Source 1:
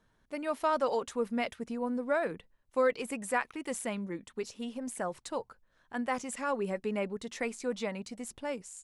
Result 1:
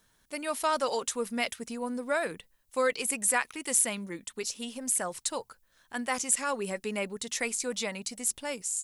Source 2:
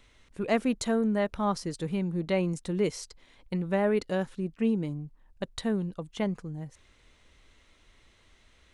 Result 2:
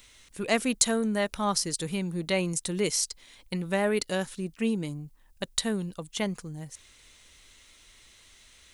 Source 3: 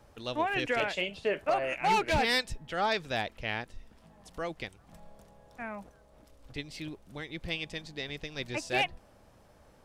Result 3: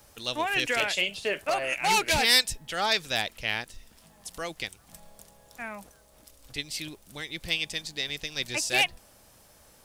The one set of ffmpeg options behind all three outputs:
-af "crystalizer=i=6:c=0,volume=0.841"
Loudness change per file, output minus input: +4.0 LU, +1.0 LU, +5.0 LU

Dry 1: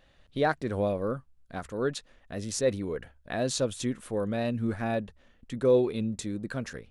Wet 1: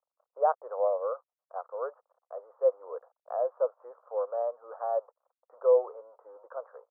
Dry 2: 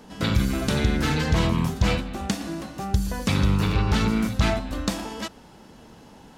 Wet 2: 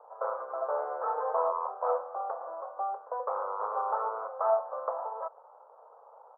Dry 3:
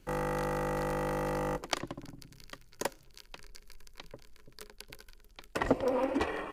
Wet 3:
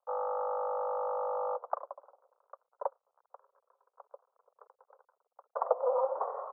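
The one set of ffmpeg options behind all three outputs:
-af "aresample=8000,aeval=exprs='sgn(val(0))*max(abs(val(0))-0.00168,0)':c=same,aresample=44100,asuperpass=centerf=790:order=12:qfactor=1,volume=1.41"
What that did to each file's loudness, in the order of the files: -0.5 LU, -8.5 LU, -0.5 LU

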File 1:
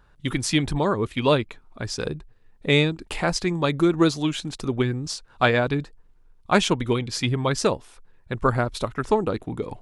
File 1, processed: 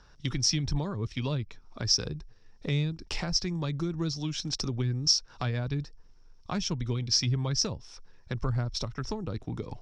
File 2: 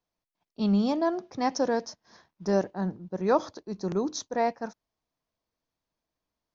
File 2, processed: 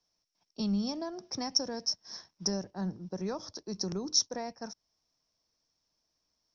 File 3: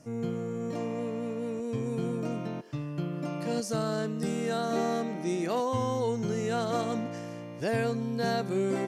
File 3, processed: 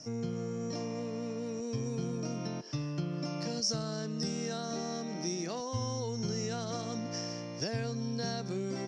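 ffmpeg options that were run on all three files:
-filter_complex "[0:a]acrossover=split=160[s0][s1];[s1]acompressor=threshold=0.0158:ratio=6[s2];[s0][s2]amix=inputs=2:normalize=0,lowpass=f=5500:t=q:w=13"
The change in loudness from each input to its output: -6.5 LU, -5.0 LU, -4.5 LU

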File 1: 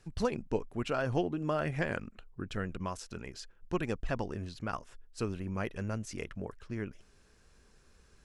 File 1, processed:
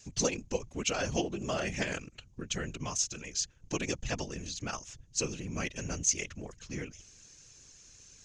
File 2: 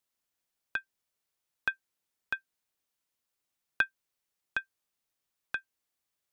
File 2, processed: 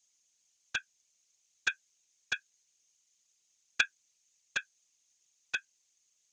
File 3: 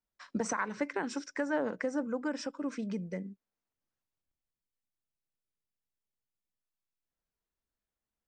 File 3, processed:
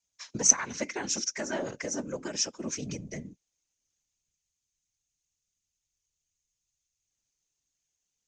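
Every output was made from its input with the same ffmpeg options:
-af "afftfilt=real='hypot(re,im)*cos(2*PI*random(0))':imag='hypot(re,im)*sin(2*PI*random(1))':win_size=512:overlap=0.75,lowpass=f=6500:t=q:w=9,highshelf=f=1900:t=q:w=1.5:g=6.5,volume=1.68"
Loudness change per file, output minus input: +2.0 LU, +0.5 LU, +6.5 LU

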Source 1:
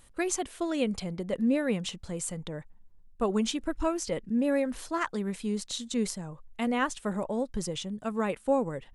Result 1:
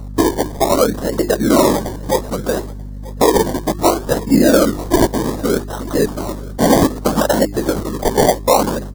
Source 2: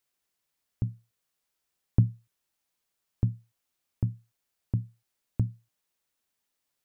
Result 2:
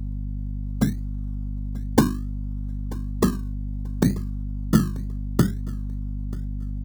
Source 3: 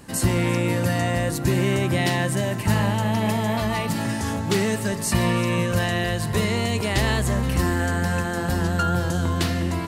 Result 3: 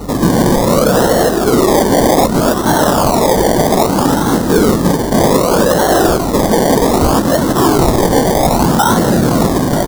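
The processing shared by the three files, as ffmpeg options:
-filter_complex "[0:a]flanger=delay=0.3:depth=4:regen=21:speed=0.22:shape=triangular,afftfilt=real='hypot(re,im)*cos(2*PI*random(0))':imag='hypot(re,im)*sin(2*PI*random(1))':win_size=512:overlap=0.75,asplit=2[s0][s1];[s1]acompressor=threshold=0.00631:ratio=12,volume=0.891[s2];[s0][s2]amix=inputs=2:normalize=0,highpass=250,lowpass=4900,acrossover=split=2700[s3][s4];[s4]acompressor=threshold=0.00141:ratio=4:attack=1:release=60[s5];[s3][s5]amix=inputs=2:normalize=0,bandreject=f=50:t=h:w=6,bandreject=f=100:t=h:w=6,bandreject=f=150:t=h:w=6,bandreject=f=200:t=h:w=6,bandreject=f=250:t=h:w=6,bandreject=f=300:t=h:w=6,bandreject=f=350:t=h:w=6,bandreject=f=400:t=h:w=6,acrusher=samples=26:mix=1:aa=0.000001:lfo=1:lforange=15.6:lforate=0.64,equalizer=f=2500:t=o:w=0.82:g=-14,aeval=exprs='val(0)+0.002*(sin(2*PI*50*n/s)+sin(2*PI*2*50*n/s)/2+sin(2*PI*3*50*n/s)/3+sin(2*PI*4*50*n/s)/4+sin(2*PI*5*50*n/s)/5)':c=same,aecho=1:1:936|1872:0.0891|0.0214,alimiter=level_in=23.7:limit=0.891:release=50:level=0:latency=1,volume=0.891"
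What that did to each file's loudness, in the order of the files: +15.0 LU, +5.5 LU, +11.5 LU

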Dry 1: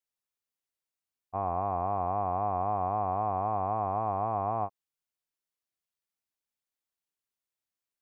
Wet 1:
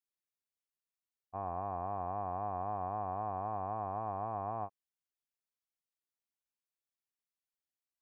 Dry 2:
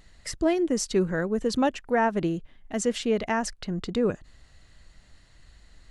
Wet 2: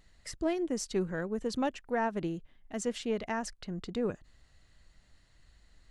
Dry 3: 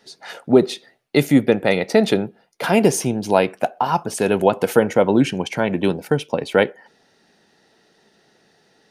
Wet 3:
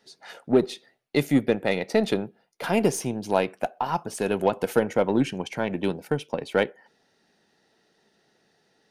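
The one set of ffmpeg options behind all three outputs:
-af "aeval=exprs='0.891*(cos(1*acos(clip(val(0)/0.891,-1,1)))-cos(1*PI/2))+0.0178*(cos(6*acos(clip(val(0)/0.891,-1,1)))-cos(6*PI/2))+0.02*(cos(7*acos(clip(val(0)/0.891,-1,1)))-cos(7*PI/2))+0.0251*(cos(8*acos(clip(val(0)/0.891,-1,1)))-cos(8*PI/2))':c=same,volume=0.473"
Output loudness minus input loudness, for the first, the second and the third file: -8.0 LU, -7.5 LU, -7.0 LU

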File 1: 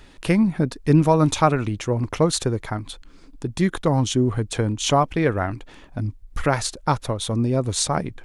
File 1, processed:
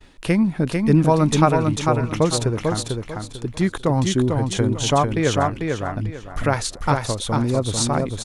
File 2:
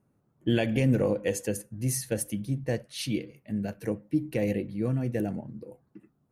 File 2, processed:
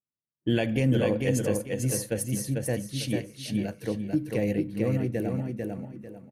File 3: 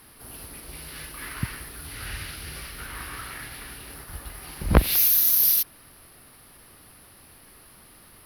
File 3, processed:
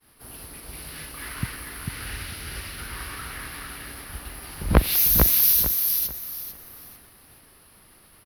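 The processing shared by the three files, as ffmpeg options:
-af "aecho=1:1:446|892|1338|1784:0.631|0.17|0.046|0.0124,agate=range=0.0224:threshold=0.00562:ratio=3:detection=peak"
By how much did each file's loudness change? +1.0 LU, +1.5 LU, +0.5 LU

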